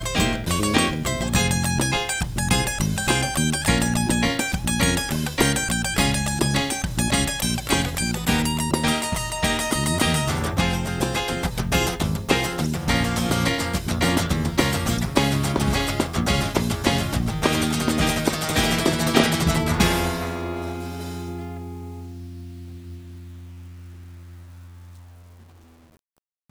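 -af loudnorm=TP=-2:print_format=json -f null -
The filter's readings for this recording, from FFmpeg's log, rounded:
"input_i" : "-22.1",
"input_tp" : "-1.6",
"input_lra" : "10.0",
"input_thresh" : "-33.4",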